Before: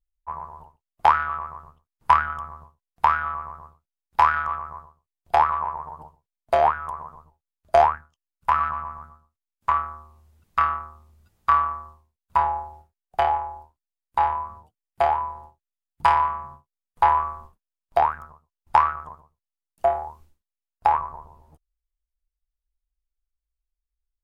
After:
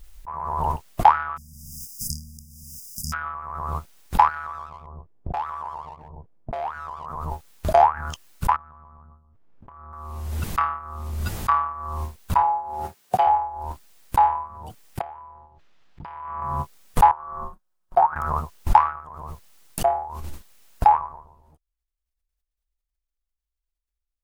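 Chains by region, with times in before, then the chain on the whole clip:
1.36–3.12 s: spectral contrast reduction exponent 0.52 + brick-wall FIR band-stop 250–4800 Hz + tape noise reduction on one side only encoder only
4.28–7.06 s: level-controlled noise filter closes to 460 Hz, open at -16.5 dBFS + waveshaping leveller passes 1 + compression 4:1, threshold -27 dBFS
8.56–9.93 s: Bessel low-pass 1.4 kHz + tilt shelf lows +7.5 dB, about 840 Hz + compression 8:1, threshold -41 dBFS
12.42–13.27 s: high-pass 110 Hz 24 dB/octave + comb of notches 160 Hz
15.01–16.42 s: compression 3:1, threshold -38 dBFS + distance through air 220 m
17.11–18.16 s: resonant high shelf 1.7 kHz -7.5 dB, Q 1.5 + comb 5.5 ms, depth 70% + upward expansion 2.5:1, over -27 dBFS
whole clip: dynamic bell 840 Hz, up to +8 dB, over -33 dBFS, Q 3.9; swell ahead of each attack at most 31 dB/s; trim -3.5 dB

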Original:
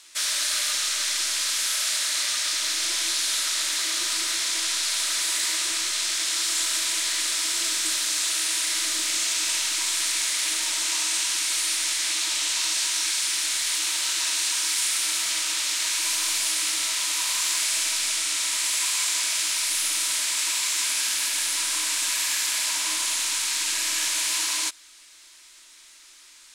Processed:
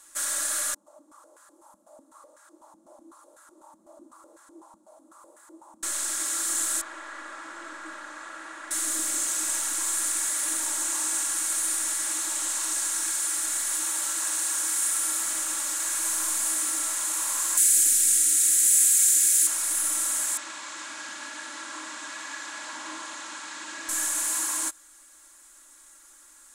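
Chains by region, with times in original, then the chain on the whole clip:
0.74–5.83 s: FFT filter 1 kHz 0 dB, 1.7 kHz -22 dB, 14 kHz +5 dB + step-sequenced band-pass 8 Hz 200–1600 Hz
6.81–8.71 s: low-pass 1.2 kHz + tilt shelf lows -8 dB, about 700 Hz
17.57–19.47 s: Butterworth band-stop 950 Hz, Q 0.78 + treble shelf 7.1 kHz +12 dB
20.37–23.89 s: Chebyshev band-pass 140–4300 Hz + distance through air 51 m
whole clip: high-order bell 3.4 kHz -15 dB; comb 3.6 ms, depth 65%

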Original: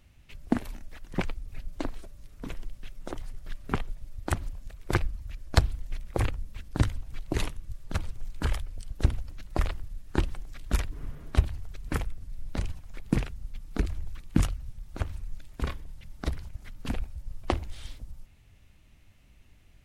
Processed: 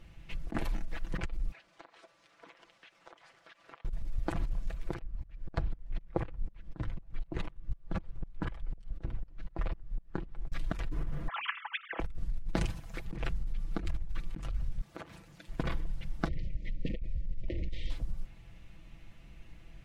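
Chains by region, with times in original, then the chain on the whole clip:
1.52–3.85 s: high-pass 700 Hz + compression 8:1, threshold -55 dBFS + distance through air 70 m
4.98–10.52 s: low-pass 2.2 kHz 6 dB/octave + sawtooth tremolo in dB swelling 4 Hz, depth 28 dB
11.28–12.00 s: formants replaced by sine waves + hum notches 50/100/150/200/250/300 Hz
12.55–13.05 s: high-pass 68 Hz 6 dB/octave + treble shelf 5.9 kHz +8 dB
14.81–15.48 s: high-pass 230 Hz + compression 5:1, threshold -47 dBFS
16.28–17.90 s: brick-wall FIR band-stop 640–1800 Hz + distance through air 140 m
whole clip: low-pass 2.8 kHz 6 dB/octave; comb 6 ms, depth 58%; compressor with a negative ratio -33 dBFS, ratio -1; trim +2 dB

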